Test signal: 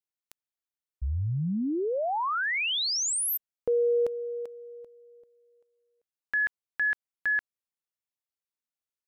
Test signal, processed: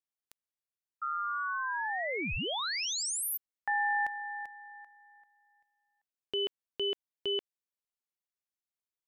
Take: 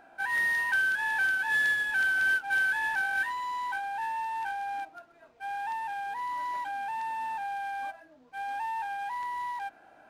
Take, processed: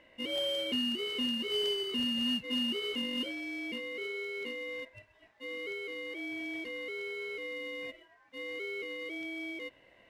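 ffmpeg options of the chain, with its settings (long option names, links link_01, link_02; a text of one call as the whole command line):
ffmpeg -i in.wav -af "acontrast=50,aeval=exprs='val(0)*sin(2*PI*1300*n/s)':channel_layout=same,volume=-8.5dB" out.wav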